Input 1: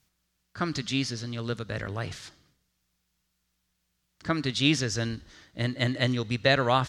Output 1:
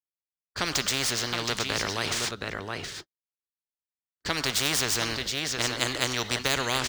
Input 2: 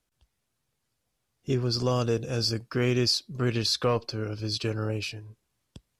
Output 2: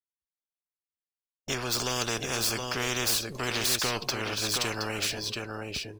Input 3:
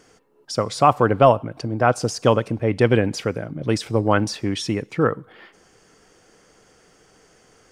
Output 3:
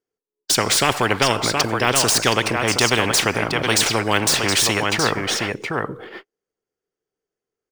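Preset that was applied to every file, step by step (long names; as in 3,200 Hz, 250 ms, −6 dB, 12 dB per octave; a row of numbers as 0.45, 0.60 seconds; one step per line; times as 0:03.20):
running median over 3 samples
noise gate −45 dBFS, range −58 dB
parametric band 400 Hz +10 dB 0.57 octaves
on a send: single-tap delay 720 ms −12.5 dB
on the sum: every bin compressed towards the loudest bin 4 to 1
level −2.5 dB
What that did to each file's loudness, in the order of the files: +1.0, −1.0, +2.5 LU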